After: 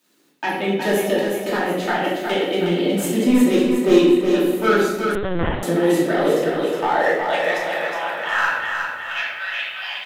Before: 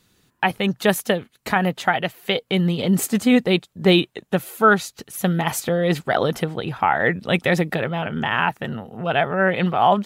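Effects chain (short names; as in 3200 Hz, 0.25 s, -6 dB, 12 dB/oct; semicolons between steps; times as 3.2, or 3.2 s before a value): in parallel at -4 dB: sine folder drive 5 dB, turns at -4.5 dBFS; on the sum: bit-crush 8-bit; high-pass sweep 300 Hz -> 2800 Hz, 6.02–9.57; overloaded stage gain 0 dB; on a send: feedback echo 0.365 s, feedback 47%, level -5.5 dB; on the sum: shoebox room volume 420 m³, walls mixed, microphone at 2.7 m; 5.15–5.63 LPC vocoder at 8 kHz pitch kept; gain -17 dB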